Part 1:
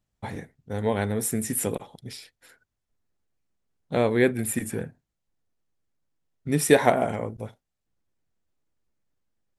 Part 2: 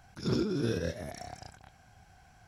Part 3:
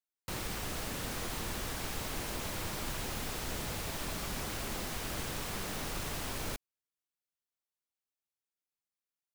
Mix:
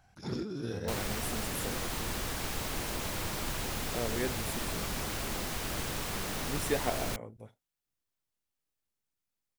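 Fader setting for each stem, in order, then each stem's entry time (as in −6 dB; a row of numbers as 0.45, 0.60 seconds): −14.0, −6.5, +2.5 decibels; 0.00, 0.00, 0.60 seconds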